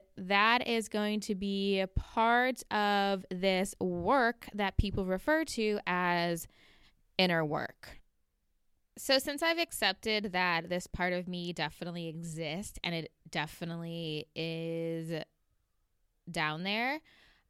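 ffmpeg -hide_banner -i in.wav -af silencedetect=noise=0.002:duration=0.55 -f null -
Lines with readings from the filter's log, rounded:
silence_start: 8.00
silence_end: 8.97 | silence_duration: 0.96
silence_start: 15.24
silence_end: 16.27 | silence_duration: 1.04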